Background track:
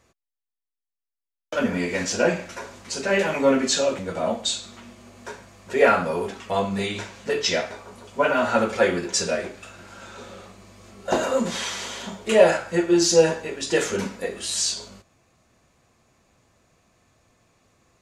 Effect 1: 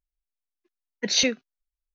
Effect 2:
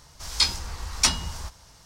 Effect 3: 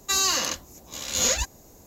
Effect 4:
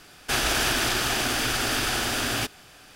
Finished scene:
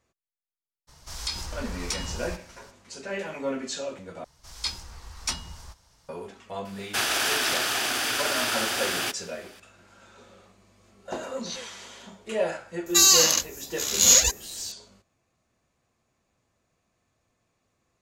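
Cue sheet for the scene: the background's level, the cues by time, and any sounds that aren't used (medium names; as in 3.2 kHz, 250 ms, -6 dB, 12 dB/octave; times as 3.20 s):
background track -11.5 dB
0.87 s: add 2 -1.5 dB, fades 0.02 s + compression 3:1, threshold -27 dBFS
4.24 s: replace with 2 -9 dB
6.65 s: add 4 -0.5 dB + high-pass 530 Hz 6 dB/octave
10.33 s: add 1 -14 dB + static phaser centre 680 Hz, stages 4
12.86 s: add 3 -1.5 dB + treble shelf 3.3 kHz +11 dB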